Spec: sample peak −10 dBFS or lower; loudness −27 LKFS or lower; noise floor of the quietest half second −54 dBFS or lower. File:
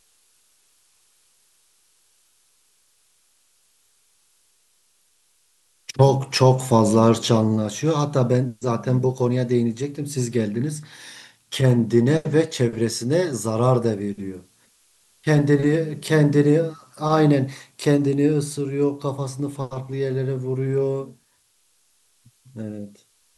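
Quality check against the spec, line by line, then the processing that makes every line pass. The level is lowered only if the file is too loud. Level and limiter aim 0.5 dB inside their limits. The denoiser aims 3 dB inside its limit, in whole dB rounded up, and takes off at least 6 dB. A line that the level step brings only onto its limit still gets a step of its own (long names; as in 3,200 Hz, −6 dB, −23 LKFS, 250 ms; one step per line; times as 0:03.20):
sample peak −3.5 dBFS: out of spec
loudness −21.0 LKFS: out of spec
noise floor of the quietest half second −64 dBFS: in spec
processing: level −6.5 dB
brickwall limiter −10.5 dBFS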